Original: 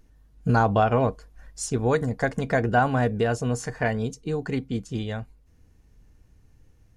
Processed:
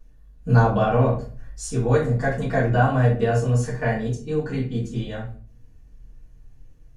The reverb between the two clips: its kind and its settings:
rectangular room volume 30 cubic metres, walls mixed, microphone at 1.5 metres
level −9 dB

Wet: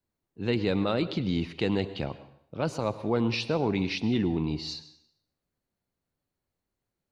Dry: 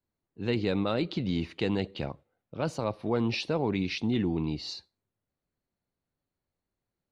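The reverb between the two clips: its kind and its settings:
dense smooth reverb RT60 0.7 s, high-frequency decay 0.95×, pre-delay 90 ms, DRR 14 dB
level +1.5 dB

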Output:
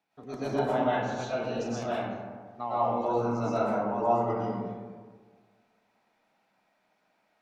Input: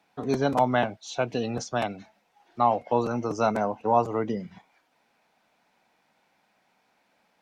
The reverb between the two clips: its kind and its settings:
comb and all-pass reverb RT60 1.6 s, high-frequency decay 0.4×, pre-delay 80 ms, DRR −10 dB
level −14 dB

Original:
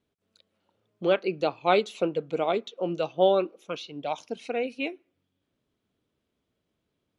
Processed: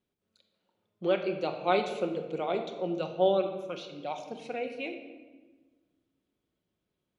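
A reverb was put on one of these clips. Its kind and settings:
rectangular room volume 1,100 cubic metres, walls mixed, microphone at 0.99 metres
level −6 dB

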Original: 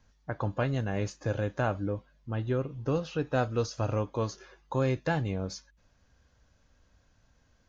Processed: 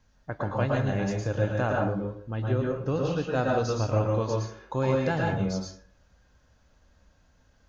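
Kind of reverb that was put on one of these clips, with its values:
dense smooth reverb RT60 0.52 s, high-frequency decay 0.55×, pre-delay 100 ms, DRR −1 dB

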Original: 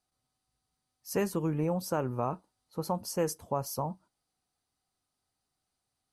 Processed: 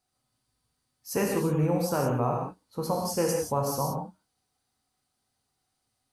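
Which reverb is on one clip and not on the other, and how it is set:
reverb whose tail is shaped and stops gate 200 ms flat, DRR −0.5 dB
level +2 dB

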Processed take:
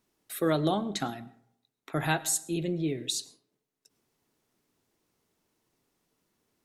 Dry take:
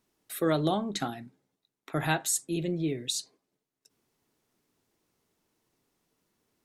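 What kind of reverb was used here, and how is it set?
comb and all-pass reverb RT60 0.66 s, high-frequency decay 0.5×, pre-delay 65 ms, DRR 19.5 dB

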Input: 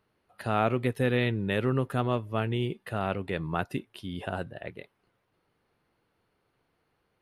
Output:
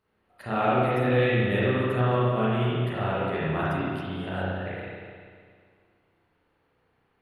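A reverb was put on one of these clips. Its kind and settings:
spring reverb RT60 2 s, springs 32/50 ms, chirp 45 ms, DRR −9.5 dB
level −5.5 dB

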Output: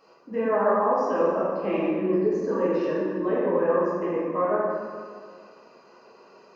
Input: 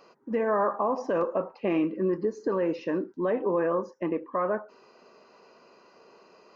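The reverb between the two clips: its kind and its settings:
dense smooth reverb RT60 2 s, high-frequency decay 0.6×, DRR −8 dB
level −5.5 dB

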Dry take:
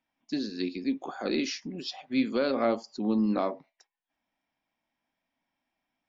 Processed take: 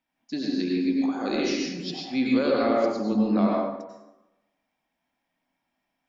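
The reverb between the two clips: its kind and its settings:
dense smooth reverb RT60 0.98 s, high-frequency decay 0.6×, pre-delay 80 ms, DRR −2.5 dB

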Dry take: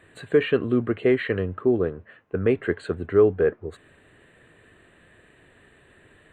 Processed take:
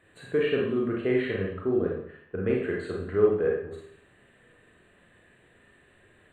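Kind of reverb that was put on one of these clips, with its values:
four-comb reverb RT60 0.61 s, combs from 31 ms, DRR −2 dB
level −8 dB

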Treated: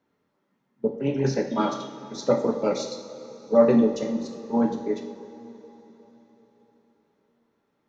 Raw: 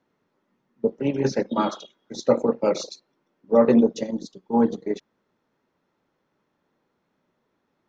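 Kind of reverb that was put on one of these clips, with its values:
coupled-rooms reverb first 0.6 s, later 4.3 s, from −15 dB, DRR 2.5 dB
level −3 dB

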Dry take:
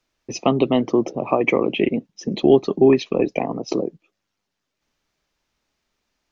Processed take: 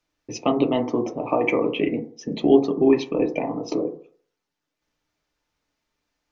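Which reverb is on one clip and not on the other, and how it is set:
feedback delay network reverb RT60 0.51 s, low-frequency decay 0.8×, high-frequency decay 0.25×, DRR 3.5 dB
level −4.5 dB

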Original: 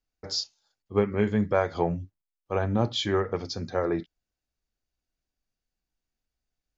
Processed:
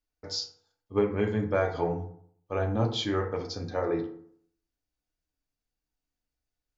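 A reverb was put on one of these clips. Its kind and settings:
feedback delay network reverb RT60 0.61 s, low-frequency decay 1.05×, high-frequency decay 0.5×, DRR 2.5 dB
level −4 dB

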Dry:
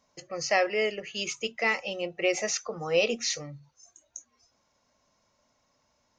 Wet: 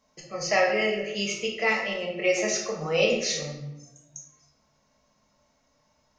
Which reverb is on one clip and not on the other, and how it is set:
rectangular room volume 330 cubic metres, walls mixed, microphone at 1.5 metres
level −1.5 dB

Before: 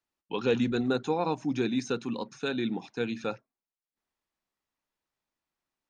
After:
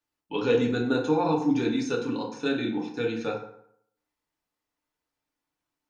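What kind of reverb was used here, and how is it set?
feedback delay network reverb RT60 0.69 s, low-frequency decay 0.95×, high-frequency decay 0.6×, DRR −1.5 dB
level −1 dB

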